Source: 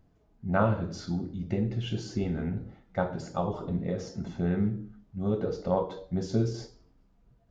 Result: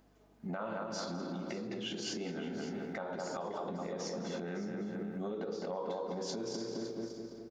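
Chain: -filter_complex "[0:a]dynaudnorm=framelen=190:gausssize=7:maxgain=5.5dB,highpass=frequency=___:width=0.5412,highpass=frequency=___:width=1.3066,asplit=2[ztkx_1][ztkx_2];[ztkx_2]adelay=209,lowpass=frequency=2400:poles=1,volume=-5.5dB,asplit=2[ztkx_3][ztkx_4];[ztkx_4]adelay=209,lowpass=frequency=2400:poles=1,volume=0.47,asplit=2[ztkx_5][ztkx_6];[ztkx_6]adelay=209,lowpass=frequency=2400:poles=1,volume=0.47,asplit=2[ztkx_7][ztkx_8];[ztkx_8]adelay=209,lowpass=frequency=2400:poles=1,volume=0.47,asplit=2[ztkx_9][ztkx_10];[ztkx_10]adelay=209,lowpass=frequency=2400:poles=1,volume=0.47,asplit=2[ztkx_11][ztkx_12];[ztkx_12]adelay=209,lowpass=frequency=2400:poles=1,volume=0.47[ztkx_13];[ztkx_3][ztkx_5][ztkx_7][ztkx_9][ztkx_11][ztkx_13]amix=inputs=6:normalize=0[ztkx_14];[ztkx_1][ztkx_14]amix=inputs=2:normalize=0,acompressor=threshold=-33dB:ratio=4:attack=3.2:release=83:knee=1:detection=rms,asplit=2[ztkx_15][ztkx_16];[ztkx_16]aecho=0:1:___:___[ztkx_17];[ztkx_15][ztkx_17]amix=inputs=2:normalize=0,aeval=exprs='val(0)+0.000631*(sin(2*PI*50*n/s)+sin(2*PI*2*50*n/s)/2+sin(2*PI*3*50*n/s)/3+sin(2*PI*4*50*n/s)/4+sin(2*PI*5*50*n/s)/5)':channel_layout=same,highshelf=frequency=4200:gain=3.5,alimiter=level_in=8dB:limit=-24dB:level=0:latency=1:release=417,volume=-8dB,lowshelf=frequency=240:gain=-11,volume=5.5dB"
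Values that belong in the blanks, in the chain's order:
180, 180, 559, 0.188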